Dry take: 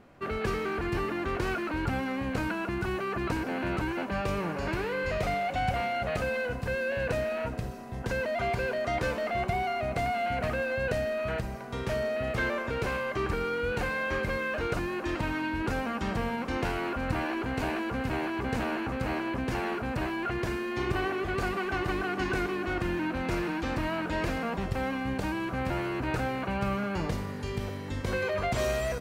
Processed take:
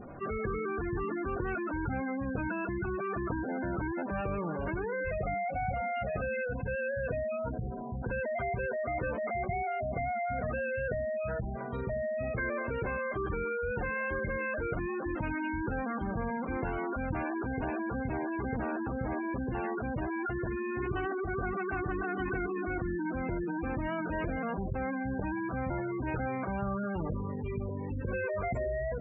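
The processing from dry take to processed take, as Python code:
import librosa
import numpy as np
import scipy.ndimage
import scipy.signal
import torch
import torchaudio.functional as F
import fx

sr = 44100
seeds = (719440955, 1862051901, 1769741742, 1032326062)

y = fx.spec_gate(x, sr, threshold_db=-15, keep='strong')
y = fx.env_flatten(y, sr, amount_pct=50)
y = y * librosa.db_to_amplitude(-5.0)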